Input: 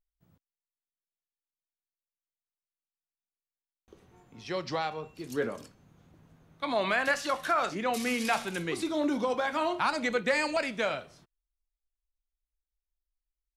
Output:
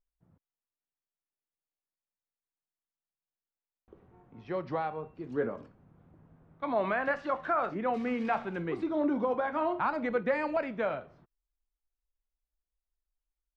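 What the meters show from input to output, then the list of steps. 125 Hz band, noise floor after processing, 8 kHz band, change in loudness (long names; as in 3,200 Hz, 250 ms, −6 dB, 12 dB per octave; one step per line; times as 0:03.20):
0.0 dB, below −85 dBFS, below −25 dB, −2.0 dB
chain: low-pass filter 1,400 Hz 12 dB per octave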